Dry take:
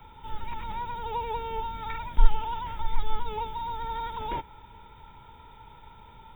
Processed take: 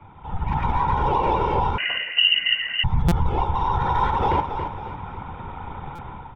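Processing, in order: local Wiener filter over 9 samples; whisper effect; in parallel at -2.5 dB: compression, threshold -34 dBFS, peak gain reduction 22.5 dB; on the sum: distance through air 160 m; level rider gain up to 12 dB; flange 0.41 Hz, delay 10 ms, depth 5.2 ms, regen +82%; on a send: feedback delay 276 ms, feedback 38%, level -10.5 dB; on the sum: peak limiter -15 dBFS, peak gain reduction 9.5 dB; 1.78–2.84 s: frequency inversion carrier 2.9 kHz; buffer glitch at 3.08/5.95 s, samples 256, times 5; trim +3.5 dB

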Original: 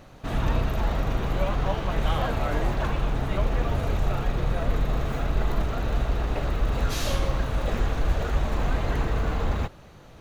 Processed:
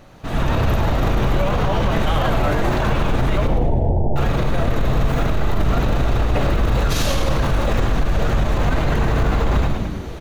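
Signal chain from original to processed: 3.47–4.16 s: steep low-pass 920 Hz 96 dB/octave; frequency-shifting echo 105 ms, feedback 53%, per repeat -83 Hz, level -8.5 dB; on a send at -13 dB: reverberation RT60 0.75 s, pre-delay 3 ms; on the sum: level rider gain up to 12.5 dB; loudness maximiser +11 dB; trim -8.5 dB

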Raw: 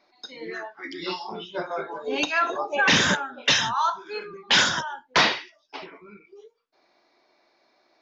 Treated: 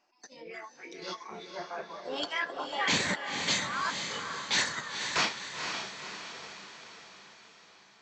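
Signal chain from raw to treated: transient shaper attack -3 dB, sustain -8 dB; formant shift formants +3 st; echo that smears into a reverb 496 ms, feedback 55%, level -6 dB; trim -8 dB

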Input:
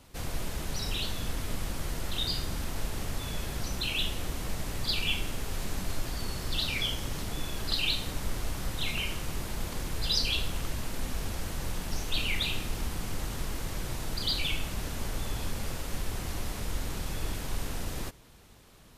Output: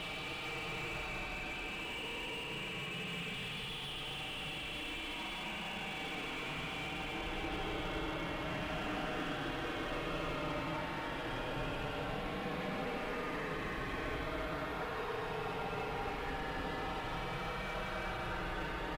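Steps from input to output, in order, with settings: comb 6.5 ms, depth 92%; Paulstretch 30×, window 0.05 s, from 4.96 s; on a send: reverse echo 271 ms -7 dB; on the sum: gain riding within 4 dB 2 s; high-pass 570 Hz 6 dB/octave; distance through air 500 m; slew-rate limiter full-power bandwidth 20 Hz; trim +1 dB

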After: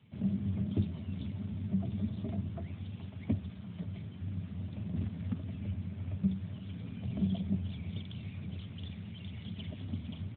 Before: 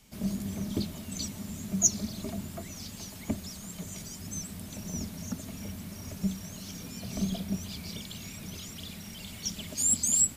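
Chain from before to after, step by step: peaking EQ 95 Hz +14 dB 1.2 oct; 2.82–3.22 s: upward compressor, threshold -58 dBFS; 4.96–5.39 s: short-mantissa float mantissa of 2-bit; delay 74 ms -20 dB; trim -4.5 dB; AMR-NB 12.2 kbps 8 kHz

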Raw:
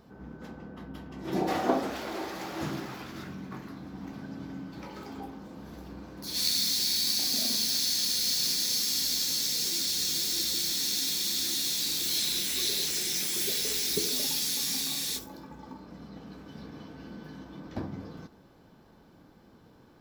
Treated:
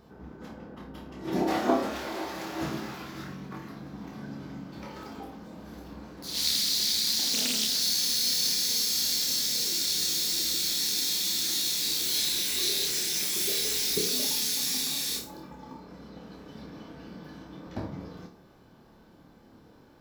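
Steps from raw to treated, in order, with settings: flutter echo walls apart 4.8 m, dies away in 0.31 s; 6.16–7.82 s: loudspeaker Doppler distortion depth 0.4 ms

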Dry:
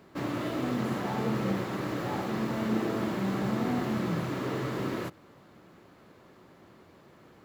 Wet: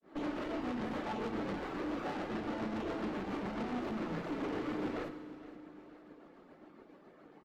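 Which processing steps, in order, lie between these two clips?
high-pass 200 Hz 24 dB/octave; reverb removal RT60 0.96 s; low-pass 1.3 kHz 6 dB/octave; band-stop 1 kHz, Q 13; valve stage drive 43 dB, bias 0.75; granulator 259 ms, grains 7.2 per s, spray 11 ms, pitch spread up and down by 0 st; feedback delay 467 ms, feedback 47%, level -17 dB; FDN reverb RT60 1.6 s, low-frequency decay 1.45×, high-frequency decay 0.9×, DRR 7.5 dB; trim +7.5 dB

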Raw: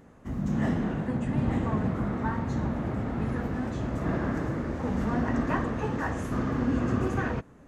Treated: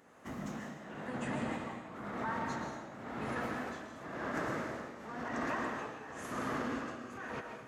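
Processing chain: high-pass 870 Hz 6 dB/octave; peak limiter -31 dBFS, peak gain reduction 11.5 dB; tremolo triangle 0.96 Hz, depth 95%; on a send: reverberation RT60 0.95 s, pre-delay 90 ms, DRR 3.5 dB; on the sum: trim +4 dB

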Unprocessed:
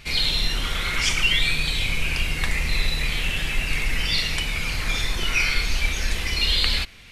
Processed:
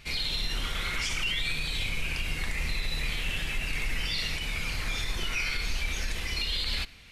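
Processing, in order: peak limiter -14.5 dBFS, peak gain reduction 9 dB; on a send: reverberation RT60 1.1 s, pre-delay 57 ms, DRR 22.5 dB; on the sum: trim -6 dB

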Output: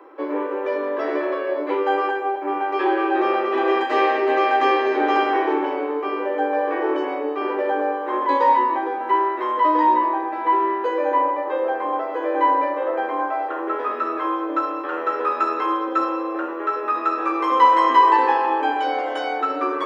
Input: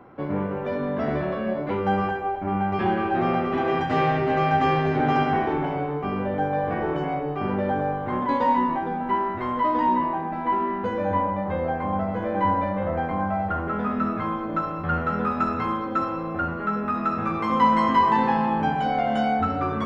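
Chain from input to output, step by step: steep high-pass 290 Hz 96 dB/octave; comb of notches 710 Hz; trim +5.5 dB

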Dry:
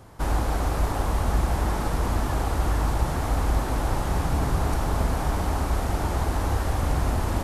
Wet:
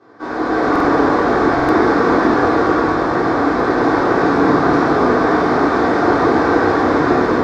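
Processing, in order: peaking EQ 1.1 kHz +8 dB 0.46 oct; level rider gain up to 11.5 dB; cabinet simulation 260–4800 Hz, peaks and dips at 320 Hz +7 dB, 450 Hz +9 dB, 1 kHz -5 dB, 1.6 kHz +6 dB, 2.9 kHz -10 dB; reverberation RT60 0.80 s, pre-delay 3 ms, DRR -10.5 dB; buffer glitch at 0.71/1.55 s, samples 2048, times 2; trim -7.5 dB

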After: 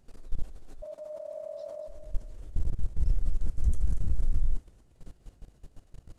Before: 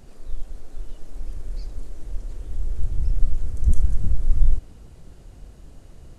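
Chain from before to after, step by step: 0.82–1.88 s: ring modulator 610 Hz; level held to a coarse grid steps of 20 dB; thinning echo 234 ms, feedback 33%, high-pass 420 Hz, level -10 dB

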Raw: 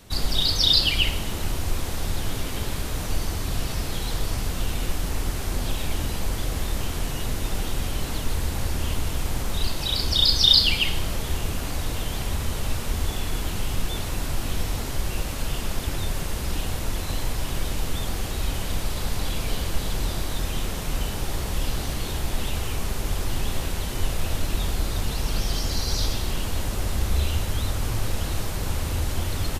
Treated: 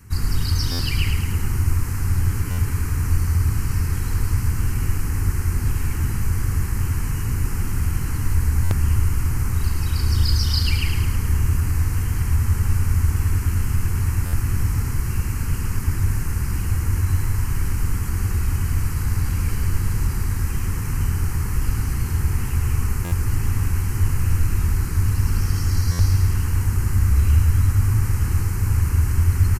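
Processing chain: peaking EQ 93 Hz +13 dB 0.8 oct; static phaser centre 1.5 kHz, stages 4; feedback delay 107 ms, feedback 52%, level -6 dB; buffer glitch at 0.71/2.50/8.63/14.25/23.04/25.91 s, samples 512, times 6; trim +1 dB

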